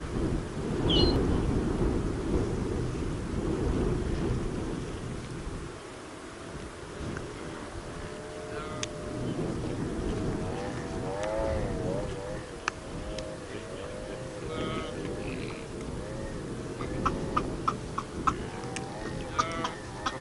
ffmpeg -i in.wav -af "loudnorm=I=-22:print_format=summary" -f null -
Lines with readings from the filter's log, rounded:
Input Integrated:    -33.2 LUFS
Input True Peak:      -9.1 dBTP
Input LRA:             7.0 LU
Input Threshold:     -43.2 LUFS